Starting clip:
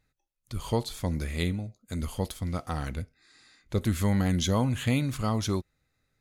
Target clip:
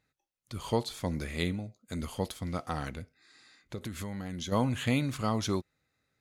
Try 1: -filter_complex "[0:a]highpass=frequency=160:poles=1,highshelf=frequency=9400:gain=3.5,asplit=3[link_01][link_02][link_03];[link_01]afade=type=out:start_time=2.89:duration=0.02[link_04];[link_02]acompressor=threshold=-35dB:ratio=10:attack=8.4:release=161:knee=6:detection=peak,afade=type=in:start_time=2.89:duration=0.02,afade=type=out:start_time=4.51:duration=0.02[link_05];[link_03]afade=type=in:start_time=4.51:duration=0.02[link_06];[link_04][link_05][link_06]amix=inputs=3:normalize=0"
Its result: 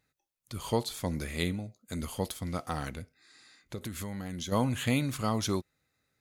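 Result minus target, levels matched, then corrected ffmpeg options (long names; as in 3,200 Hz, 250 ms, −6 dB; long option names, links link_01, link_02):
8,000 Hz band +3.5 dB
-filter_complex "[0:a]highpass=frequency=160:poles=1,highshelf=frequency=9400:gain=-7,asplit=3[link_01][link_02][link_03];[link_01]afade=type=out:start_time=2.89:duration=0.02[link_04];[link_02]acompressor=threshold=-35dB:ratio=10:attack=8.4:release=161:knee=6:detection=peak,afade=type=in:start_time=2.89:duration=0.02,afade=type=out:start_time=4.51:duration=0.02[link_05];[link_03]afade=type=in:start_time=4.51:duration=0.02[link_06];[link_04][link_05][link_06]amix=inputs=3:normalize=0"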